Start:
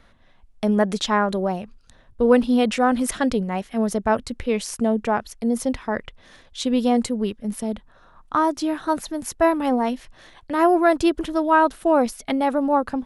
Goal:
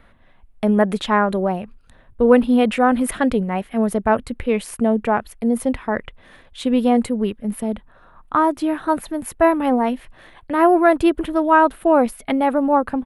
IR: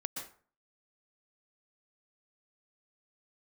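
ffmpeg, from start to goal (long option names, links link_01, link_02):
-af "firequalizer=gain_entry='entry(2400,0);entry(5700,-15);entry(9500,-2)':delay=0.05:min_phase=1,volume=3dB"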